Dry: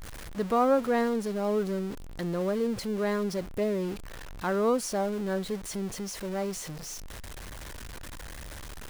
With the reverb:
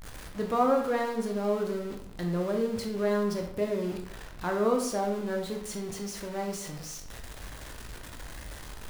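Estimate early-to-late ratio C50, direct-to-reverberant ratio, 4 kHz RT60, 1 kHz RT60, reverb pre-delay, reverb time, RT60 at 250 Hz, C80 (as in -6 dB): 6.5 dB, 2.0 dB, 0.50 s, 0.65 s, 14 ms, 0.65 s, 0.65 s, 10.0 dB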